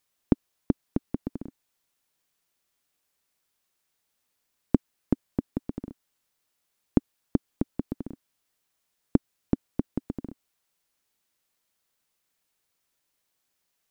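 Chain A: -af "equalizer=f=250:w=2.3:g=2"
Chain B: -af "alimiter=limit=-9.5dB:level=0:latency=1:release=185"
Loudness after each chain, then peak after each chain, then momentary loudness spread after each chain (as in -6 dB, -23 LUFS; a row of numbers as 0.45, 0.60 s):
-30.5, -35.0 LUFS; -3.5, -9.5 dBFS; 13, 10 LU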